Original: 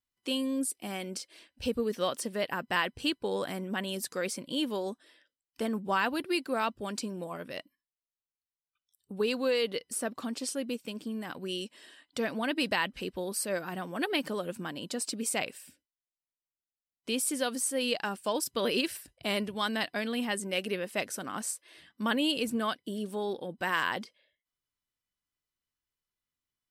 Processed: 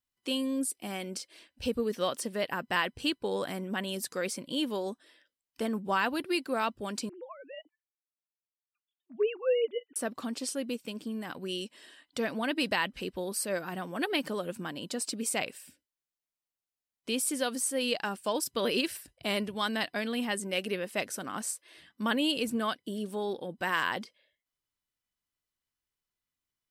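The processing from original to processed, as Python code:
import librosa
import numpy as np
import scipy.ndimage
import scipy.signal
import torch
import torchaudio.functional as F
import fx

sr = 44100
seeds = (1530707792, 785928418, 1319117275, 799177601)

y = fx.sine_speech(x, sr, at=(7.09, 9.96))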